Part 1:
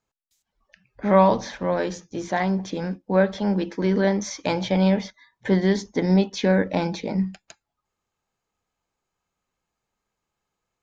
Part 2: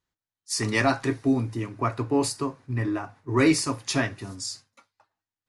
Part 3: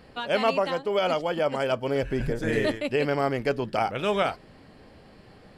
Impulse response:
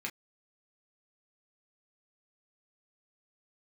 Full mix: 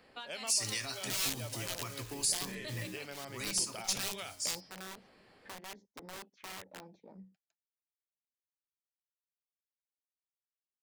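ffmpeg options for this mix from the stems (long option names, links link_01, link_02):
-filter_complex "[0:a]afwtdn=0.0251,aeval=exprs='(mod(5.62*val(0)+1,2)-1)/5.62':channel_layout=same,volume=-9.5dB[link_01];[1:a]highshelf=frequency=3000:gain=12,acrusher=bits=6:mix=0:aa=0.000001,volume=-1dB,afade=type=out:start_time=2.72:duration=0.28:silence=0.281838,asplit=2[link_02][link_03];[2:a]volume=-8.5dB,asplit=2[link_04][link_05];[link_05]volume=-9.5dB[link_06];[link_03]apad=whole_len=481904[link_07];[link_01][link_07]sidechaingate=range=-13dB:threshold=-44dB:ratio=16:detection=peak[link_08];[link_02][link_04]amix=inputs=2:normalize=0,bandreject=frequency=207.9:width_type=h:width=4,bandreject=frequency=415.8:width_type=h:width=4,bandreject=frequency=623.7:width_type=h:width=4,bandreject=frequency=831.6:width_type=h:width=4,bandreject=frequency=1039.5:width_type=h:width=4,bandreject=frequency=1247.4:width_type=h:width=4,bandreject=frequency=1455.3:width_type=h:width=4,bandreject=frequency=1663.2:width_type=h:width=4,bandreject=frequency=1871.1:width_type=h:width=4,bandreject=frequency=2079:width_type=h:width=4,bandreject=frequency=2286.9:width_type=h:width=4,bandreject=frequency=2494.8:width_type=h:width=4,bandreject=frequency=2702.7:width_type=h:width=4,bandreject=frequency=2910.6:width_type=h:width=4,bandreject=frequency=3118.5:width_type=h:width=4,bandreject=frequency=3326.4:width_type=h:width=4,bandreject=frequency=3534.3:width_type=h:width=4,bandreject=frequency=3742.2:width_type=h:width=4,bandreject=frequency=3950.1:width_type=h:width=4,bandreject=frequency=4158:width_type=h:width=4,bandreject=frequency=4365.9:width_type=h:width=4,bandreject=frequency=4573.8:width_type=h:width=4,bandreject=frequency=4781.7:width_type=h:width=4,bandreject=frequency=4989.6:width_type=h:width=4,bandreject=frequency=5197.5:width_type=h:width=4,bandreject=frequency=5405.4:width_type=h:width=4,bandreject=frequency=5613.3:width_type=h:width=4,bandreject=frequency=5821.2:width_type=h:width=4,bandreject=frequency=6029.1:width_type=h:width=4,alimiter=limit=-18.5dB:level=0:latency=1:release=171,volume=0dB[link_09];[3:a]atrim=start_sample=2205[link_10];[link_06][link_10]afir=irnorm=-1:irlink=0[link_11];[link_08][link_09][link_11]amix=inputs=3:normalize=0,lowshelf=frequency=320:gain=-10,acrossover=split=140|3000[link_12][link_13][link_14];[link_13]acompressor=threshold=-44dB:ratio=6[link_15];[link_12][link_15][link_14]amix=inputs=3:normalize=0"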